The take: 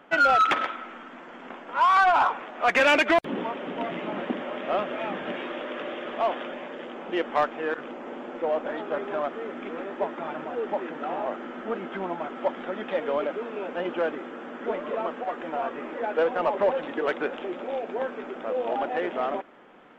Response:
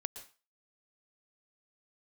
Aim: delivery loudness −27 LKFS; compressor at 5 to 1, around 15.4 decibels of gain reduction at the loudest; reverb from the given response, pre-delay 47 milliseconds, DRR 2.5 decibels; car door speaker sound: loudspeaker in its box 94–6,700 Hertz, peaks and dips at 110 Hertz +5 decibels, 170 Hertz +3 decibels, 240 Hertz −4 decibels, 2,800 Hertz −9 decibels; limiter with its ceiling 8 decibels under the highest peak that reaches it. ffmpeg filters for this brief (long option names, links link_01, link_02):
-filter_complex "[0:a]acompressor=threshold=-35dB:ratio=5,alimiter=level_in=8dB:limit=-24dB:level=0:latency=1,volume=-8dB,asplit=2[link_01][link_02];[1:a]atrim=start_sample=2205,adelay=47[link_03];[link_02][link_03]afir=irnorm=-1:irlink=0,volume=-1.5dB[link_04];[link_01][link_04]amix=inputs=2:normalize=0,highpass=94,equalizer=frequency=110:width_type=q:width=4:gain=5,equalizer=frequency=170:width_type=q:width=4:gain=3,equalizer=frequency=240:width_type=q:width=4:gain=-4,equalizer=frequency=2800:width_type=q:width=4:gain=-9,lowpass=frequency=6700:width=0.5412,lowpass=frequency=6700:width=1.3066,volume=12dB"